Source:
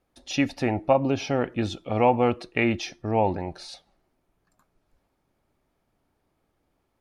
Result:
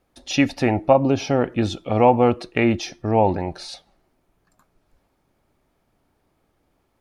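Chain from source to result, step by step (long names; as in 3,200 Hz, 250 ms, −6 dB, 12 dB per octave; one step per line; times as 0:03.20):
0:00.84–0:03.29: dynamic equaliser 2,400 Hz, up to −5 dB, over −38 dBFS, Q 0.96
level +5.5 dB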